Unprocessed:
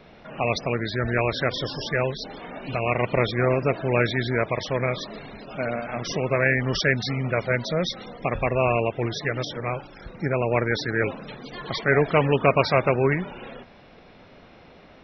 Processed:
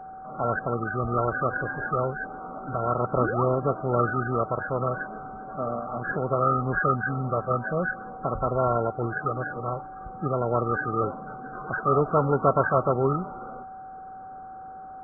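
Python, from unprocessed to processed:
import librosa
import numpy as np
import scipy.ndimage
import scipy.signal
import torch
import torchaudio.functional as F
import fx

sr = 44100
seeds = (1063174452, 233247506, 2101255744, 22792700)

y = fx.freq_compress(x, sr, knee_hz=1100.0, ratio=4.0)
y = fx.spec_paint(y, sr, seeds[0], shape='rise', start_s=3.2, length_s=0.24, low_hz=210.0, high_hz=1200.0, level_db=-28.0)
y = y + 10.0 ** (-36.0 / 20.0) * np.sin(2.0 * np.pi * 760.0 * np.arange(len(y)) / sr)
y = y * librosa.db_to_amplitude(-2.5)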